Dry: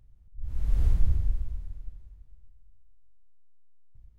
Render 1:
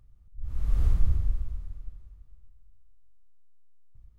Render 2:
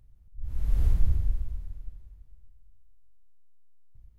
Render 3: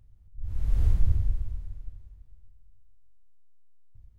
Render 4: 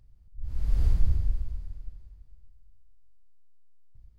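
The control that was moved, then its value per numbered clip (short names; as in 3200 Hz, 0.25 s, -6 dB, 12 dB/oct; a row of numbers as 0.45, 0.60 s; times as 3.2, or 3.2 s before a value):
bell, frequency: 1200, 12000, 94, 4700 Hz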